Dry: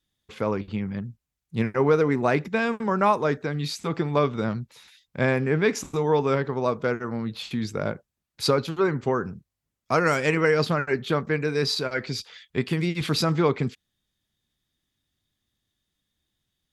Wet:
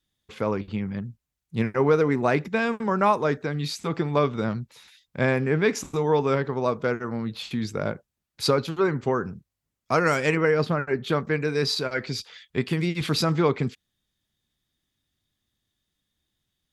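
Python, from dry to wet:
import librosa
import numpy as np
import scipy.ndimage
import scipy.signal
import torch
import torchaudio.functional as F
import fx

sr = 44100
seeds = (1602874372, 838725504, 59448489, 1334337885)

y = fx.high_shelf(x, sr, hz=fx.line((10.35, 3700.0), (11.03, 2300.0)), db=-10.5, at=(10.35, 11.03), fade=0.02)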